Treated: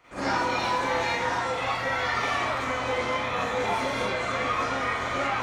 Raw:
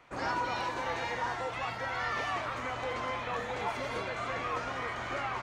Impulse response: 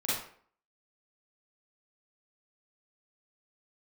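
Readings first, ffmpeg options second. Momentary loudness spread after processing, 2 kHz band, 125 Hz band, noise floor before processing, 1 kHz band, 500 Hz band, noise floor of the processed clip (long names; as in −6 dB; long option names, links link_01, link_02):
2 LU, +7.5 dB, +6.0 dB, −39 dBFS, +7.0 dB, +8.0 dB, −31 dBFS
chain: -filter_complex "[0:a]highshelf=frequency=5000:gain=6[link_01];[1:a]atrim=start_sample=2205[link_02];[link_01][link_02]afir=irnorm=-1:irlink=0"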